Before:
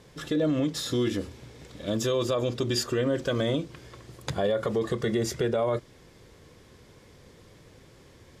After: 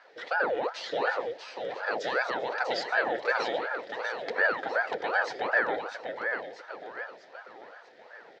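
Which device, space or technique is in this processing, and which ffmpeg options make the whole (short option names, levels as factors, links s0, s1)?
voice changer toy: -af "aecho=1:1:644|1288|1932|2576|3220|3864:0.473|0.232|0.114|0.0557|0.0273|0.0134,aeval=exprs='val(0)*sin(2*PI*670*n/s+670*0.75/2.7*sin(2*PI*2.7*n/s))':c=same,highpass=480,equalizer=f=490:t=q:w=4:g=9,equalizer=f=1100:t=q:w=4:g=-8,equalizer=f=1800:t=q:w=4:g=10,equalizer=f=2800:t=q:w=4:g=-3,lowpass=f=4600:w=0.5412,lowpass=f=4600:w=1.3066"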